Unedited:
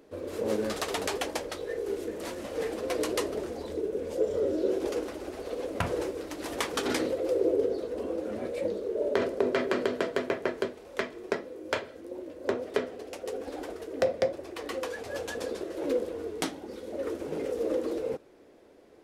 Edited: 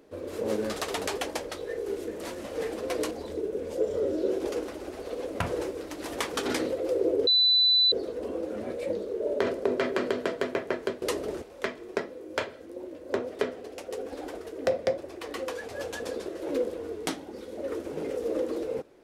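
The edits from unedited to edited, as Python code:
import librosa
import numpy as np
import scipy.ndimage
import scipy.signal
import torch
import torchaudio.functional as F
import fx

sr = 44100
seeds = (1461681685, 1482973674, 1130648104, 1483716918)

y = fx.edit(x, sr, fx.move(start_s=3.11, length_s=0.4, to_s=10.77),
    fx.insert_tone(at_s=7.67, length_s=0.65, hz=3990.0, db=-18.0), tone=tone)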